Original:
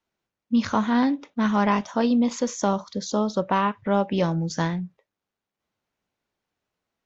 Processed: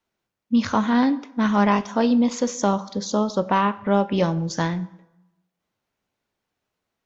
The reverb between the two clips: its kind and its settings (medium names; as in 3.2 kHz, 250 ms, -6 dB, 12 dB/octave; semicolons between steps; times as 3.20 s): plate-style reverb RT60 0.94 s, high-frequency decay 0.7×, DRR 15 dB; trim +2 dB